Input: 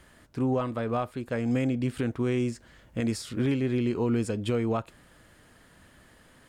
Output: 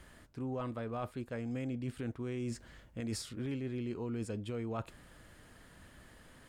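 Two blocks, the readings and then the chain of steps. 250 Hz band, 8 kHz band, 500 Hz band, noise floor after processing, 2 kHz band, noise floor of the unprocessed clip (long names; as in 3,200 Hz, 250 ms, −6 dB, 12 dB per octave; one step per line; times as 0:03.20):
−11.0 dB, −5.5 dB, −11.5 dB, −59 dBFS, −10.5 dB, −58 dBFS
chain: low-shelf EQ 74 Hz +6 dB
reversed playback
downward compressor, threshold −34 dBFS, peak gain reduction 11.5 dB
reversed playback
level −2 dB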